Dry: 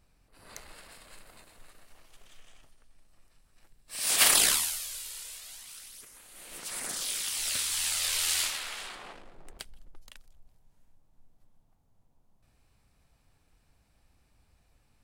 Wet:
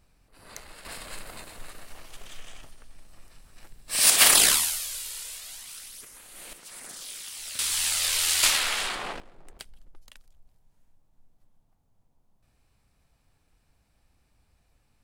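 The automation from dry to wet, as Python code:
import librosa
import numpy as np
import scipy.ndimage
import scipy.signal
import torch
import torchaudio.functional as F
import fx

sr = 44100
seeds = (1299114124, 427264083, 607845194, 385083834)

y = fx.gain(x, sr, db=fx.steps((0.0, 3.0), (0.85, 12.0), (4.1, 4.5), (6.53, -6.5), (7.59, 4.0), (8.43, 11.5), (9.2, -0.5)))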